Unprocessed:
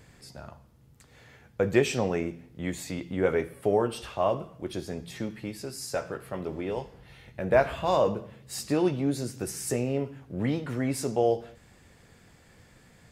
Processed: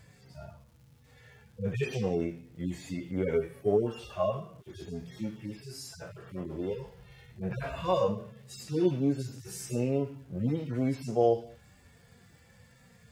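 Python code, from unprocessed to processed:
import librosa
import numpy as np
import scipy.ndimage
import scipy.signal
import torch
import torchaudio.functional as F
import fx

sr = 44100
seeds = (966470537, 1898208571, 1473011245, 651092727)

y = fx.hpss_only(x, sr, part='harmonic')
y = fx.dmg_crackle(y, sr, seeds[0], per_s=530.0, level_db=-58.0)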